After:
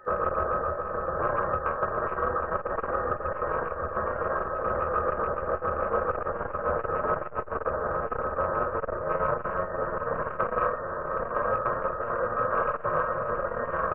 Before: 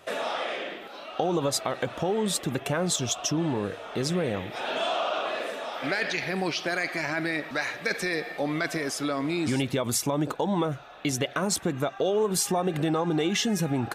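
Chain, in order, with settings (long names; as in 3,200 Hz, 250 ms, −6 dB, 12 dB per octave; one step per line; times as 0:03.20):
samples sorted by size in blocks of 64 samples
in parallel at −1 dB: compressor whose output falls as the input rises −33 dBFS, ratio −1
on the sum: mains hum 60 Hz, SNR 12 dB
bit-depth reduction 12 bits, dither none
high-pass filter 1,200 Hz 12 dB per octave
rotating-speaker cabinet horn 7 Hz, later 0.85 Hz, at 0:08.26
voice inversion scrambler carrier 2,600 Hz
phase-vocoder pitch shift with formants kept −7 semitones
multi-tap delay 52/157/261/711/768 ms −6/−19.5/−18/−7.5/−6 dB
on a send at −8.5 dB: convolution reverb RT60 0.55 s, pre-delay 5 ms
on the sum: saturating transformer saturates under 320 Hz
level +8 dB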